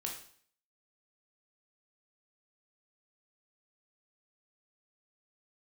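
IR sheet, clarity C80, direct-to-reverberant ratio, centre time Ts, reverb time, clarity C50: 10.0 dB, -0.5 dB, 28 ms, 0.55 s, 6.0 dB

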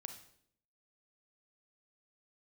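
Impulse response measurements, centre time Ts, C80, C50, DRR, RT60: 15 ms, 12.0 dB, 8.5 dB, 6.0 dB, 0.65 s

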